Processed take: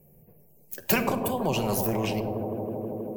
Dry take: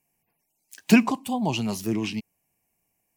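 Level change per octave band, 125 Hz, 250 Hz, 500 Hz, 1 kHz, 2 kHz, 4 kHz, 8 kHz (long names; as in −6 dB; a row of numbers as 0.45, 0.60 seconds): +0.5, −6.5, +5.0, +1.0, −3.0, −2.0, +1.5 decibels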